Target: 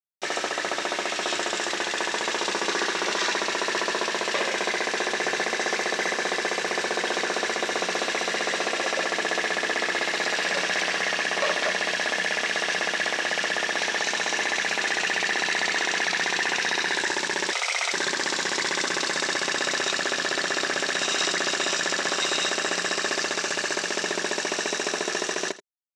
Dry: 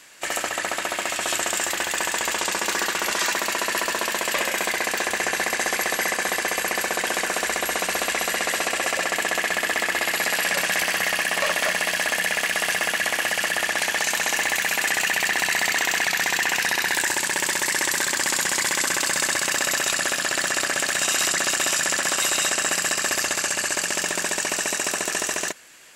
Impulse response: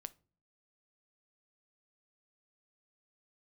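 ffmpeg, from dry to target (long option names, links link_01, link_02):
-filter_complex "[0:a]aemphasis=mode=reproduction:type=75kf,asplit=2[link_01][link_02];[link_02]alimiter=limit=-19.5dB:level=0:latency=1:release=72,volume=3dB[link_03];[link_01][link_03]amix=inputs=2:normalize=0,acrusher=bits=4:mix=0:aa=0.000001,aecho=1:1:82:0.15,asettb=1/sr,asplit=3[link_04][link_05][link_06];[link_04]atrim=end=17.524[link_07];[link_05]atrim=start=17.52:end=17.93,asetpts=PTS-STARTPTS,afade=type=in:duration=0.004:curve=qsin,afade=type=out:start_time=0.406:duration=0.004:curve=qsin,afreqshift=350[link_08];[link_06]atrim=start=17.926[link_09];[link_07][link_08]acrossfade=duration=0.004:curve1=hsin:curve2=qsin[link_10];[link_10][link_09]acrossfade=duration=0.004:curve1=qsin:curve2=hsin,highpass=150,equalizer=frequency=400:width_type=q:width=4:gain=7,equalizer=frequency=3800:width_type=q:width=4:gain=7,equalizer=frequency=5600:width_type=q:width=4:gain=8,lowpass=frequency=8100:width=0.5412,lowpass=frequency=8100:width=1.3066,volume=-5.5dB"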